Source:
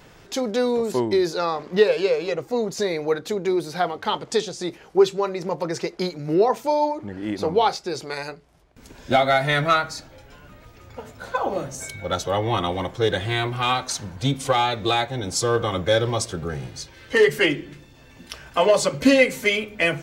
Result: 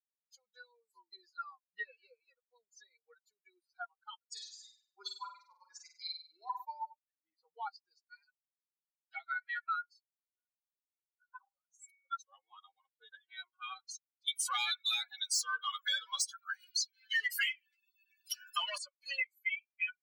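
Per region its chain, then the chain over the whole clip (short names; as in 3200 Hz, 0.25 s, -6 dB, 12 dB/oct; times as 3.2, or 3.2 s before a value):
4.32–6.65 tilt shelf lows -5 dB, about 710 Hz + flutter echo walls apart 8.4 m, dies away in 1.3 s
8.27–11.64 HPF 1200 Hz 6 dB/oct + upward compressor, threshold -41 dBFS + Doppler distortion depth 0.21 ms
14.28–18.78 tilt +2 dB/oct + overdrive pedal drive 22 dB, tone 6900 Hz, clips at -5.5 dBFS
whole clip: per-bin expansion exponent 3; inverse Chebyshev high-pass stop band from 290 Hz, stop band 70 dB; compressor 4:1, threshold -37 dBFS; gain +2.5 dB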